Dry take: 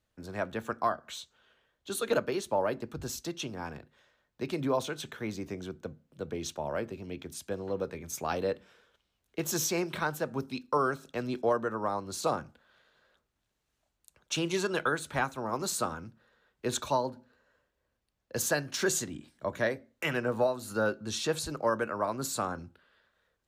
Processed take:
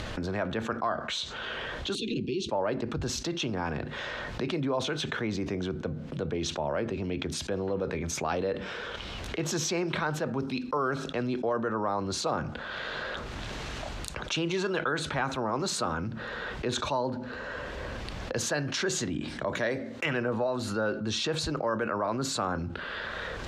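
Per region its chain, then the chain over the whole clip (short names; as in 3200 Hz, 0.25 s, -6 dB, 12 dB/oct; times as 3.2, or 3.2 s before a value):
1.95–2.49 Chebyshev band-stop 370–2600 Hz, order 4 + air absorption 86 m
19.46–20.06 HPF 110 Hz + high shelf 3900 Hz +8 dB + mismatched tape noise reduction decoder only
whole clip: upward compressor, threshold -37 dBFS; LPF 4400 Hz 12 dB/oct; fast leveller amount 70%; gain -3.5 dB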